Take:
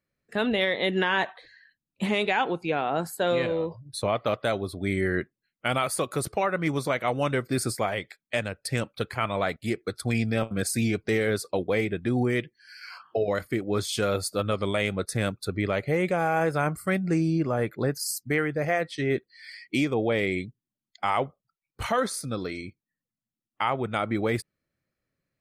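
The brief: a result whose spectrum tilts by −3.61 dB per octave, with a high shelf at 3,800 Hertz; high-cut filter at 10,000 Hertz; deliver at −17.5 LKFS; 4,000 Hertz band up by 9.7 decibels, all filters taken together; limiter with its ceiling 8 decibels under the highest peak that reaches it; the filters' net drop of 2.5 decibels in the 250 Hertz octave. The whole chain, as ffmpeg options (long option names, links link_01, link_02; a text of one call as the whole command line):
ffmpeg -i in.wav -af "lowpass=10000,equalizer=frequency=250:width_type=o:gain=-3.5,highshelf=frequency=3800:gain=5.5,equalizer=frequency=4000:width_type=o:gain=9,volume=10.5dB,alimiter=limit=-4.5dB:level=0:latency=1" out.wav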